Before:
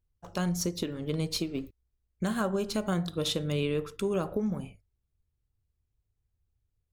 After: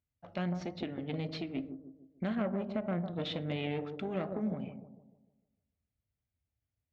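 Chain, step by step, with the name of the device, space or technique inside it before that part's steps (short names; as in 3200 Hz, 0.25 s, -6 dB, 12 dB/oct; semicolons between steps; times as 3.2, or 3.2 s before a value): 2.35–3.16 bell 4800 Hz -13.5 dB 1.9 oct; analogue delay pedal into a guitar amplifier (analogue delay 0.151 s, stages 1024, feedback 44%, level -8 dB; tube stage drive 24 dB, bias 0.6; speaker cabinet 83–3700 Hz, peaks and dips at 250 Hz +6 dB, 400 Hz -5 dB, 640 Hz +7 dB, 1000 Hz -5 dB, 2100 Hz +6 dB); gain -2.5 dB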